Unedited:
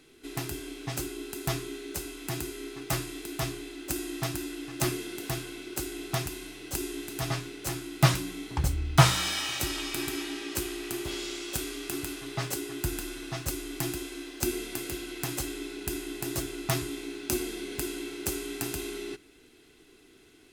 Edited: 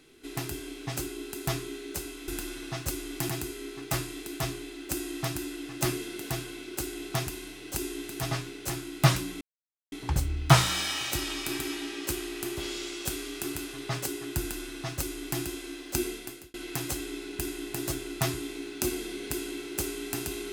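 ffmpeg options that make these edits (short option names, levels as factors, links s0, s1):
-filter_complex "[0:a]asplit=5[s0][s1][s2][s3][s4];[s0]atrim=end=2.282[s5];[s1]atrim=start=12.878:end=13.892[s6];[s2]atrim=start=2.278:end=8.4,asetpts=PTS-STARTPTS,afade=t=out:st=6.118:d=0.004:c=hsin,apad=pad_dur=0.51[s7];[s3]atrim=start=8.4:end=15.02,asetpts=PTS-STARTPTS,afade=t=in:d=0.004:c=hsin,afade=t=out:st=6.13:d=0.49[s8];[s4]atrim=start=15.02,asetpts=PTS-STARTPTS,afade=t=in:d=0.004:c=hsin[s9];[s5][s6]acrossfade=d=0.004:c1=hsin:c2=hsin[s10];[s7][s8][s9]concat=n=3:v=0:a=1[s11];[s10][s11]acrossfade=d=0.004:c1=hsin:c2=hsin"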